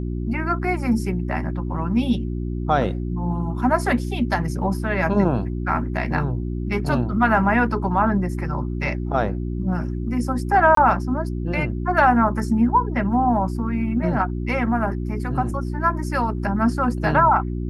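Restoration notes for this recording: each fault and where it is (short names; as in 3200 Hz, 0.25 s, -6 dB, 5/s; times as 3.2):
hum 60 Hz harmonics 6 -26 dBFS
10.75–10.77 gap 23 ms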